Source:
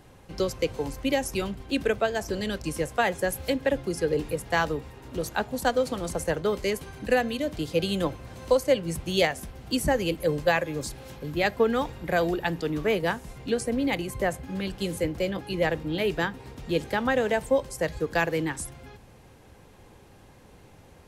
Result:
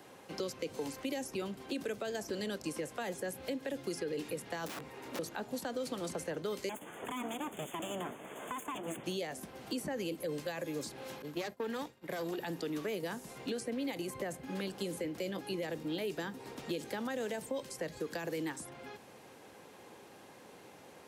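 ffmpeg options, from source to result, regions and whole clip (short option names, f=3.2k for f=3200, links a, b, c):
-filter_complex "[0:a]asettb=1/sr,asplit=3[a][b][c];[a]atrim=end=4.664[d];[b]atrim=start=4.66:end=5.19,asetpts=PTS-STARTPTS,afade=t=in:d=0.004:c=qsin,afade=t=out:st=0.526:d=0.004:c=qsin,equalizer=f=2.2k:t=o:w=0.28:g=5.5,bandreject=f=50:t=h:w=6,bandreject=f=100:t=h:w=6,bandreject=f=150:t=h:w=6,bandreject=f=200:t=h:w=6,bandreject=f=250:t=h:w=6,aeval=exprs='(mod(33.5*val(0)+1,2)-1)/33.5':c=same[e];[c]atrim=start=5.186[f];[d][e]acrossfade=d=0.004:c1=hsin:c2=qsin[g];[g][f]acrossfade=d=0.004:c1=qsin:c2=hsin,asettb=1/sr,asplit=3[h][i][j];[h]atrim=end=6.694[k];[i]atrim=start=6.69:end=9.04,asetpts=PTS-STARTPTS,afade=t=in:d=0.004:c=qsin,afade=t=out:st=2.346:d=0.004:c=qsin,equalizer=f=490:t=o:w=0.4:g=5,aeval=exprs='abs(val(0))':c=same,asuperstop=centerf=4800:order=20:qfactor=1.7[l];[j]atrim=start=9.036[m];[k][l]acrossfade=d=0.004:c1=hsin:c2=qsin[n];[n][m]acrossfade=d=0.004:c1=qsin:c2=hsin,asettb=1/sr,asplit=3[o][p][q];[o]atrim=end=11.224[r];[p]atrim=start=11.22:end=12.38,asetpts=PTS-STARTPTS,afade=t=in:d=0.004:c=qsin,afade=t=out:st=1.156:d=0.004:c=qsin,agate=range=-33dB:threshold=-32dB:ratio=3:release=100:detection=peak,aeval=exprs='(tanh(10*val(0)+0.75)-tanh(0.75))/10':c=same[s];[q]atrim=start=12.376[t];[r][s]acrossfade=d=0.004:c1=hsin:c2=qsin[u];[u][t]acrossfade=d=0.004:c1=qsin:c2=hsin,alimiter=limit=-20.5dB:level=0:latency=1:release=21,highpass=260,acrossover=split=350|1500|4500[v][w][x][y];[v]acompressor=threshold=-40dB:ratio=4[z];[w]acompressor=threshold=-44dB:ratio=4[aa];[x]acompressor=threshold=-51dB:ratio=4[ab];[y]acompressor=threshold=-50dB:ratio=4[ac];[z][aa][ab][ac]amix=inputs=4:normalize=0,volume=1dB"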